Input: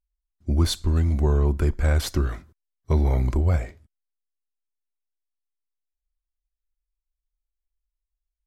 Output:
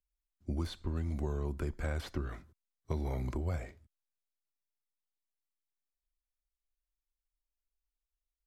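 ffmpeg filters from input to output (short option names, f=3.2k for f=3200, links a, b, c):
-filter_complex "[0:a]acrossover=split=110|3200[a][b][c];[a]acompressor=threshold=-32dB:ratio=4[d];[b]acompressor=threshold=-27dB:ratio=4[e];[c]acompressor=threshold=-50dB:ratio=4[f];[d][e][f]amix=inputs=3:normalize=0,volume=-7.5dB"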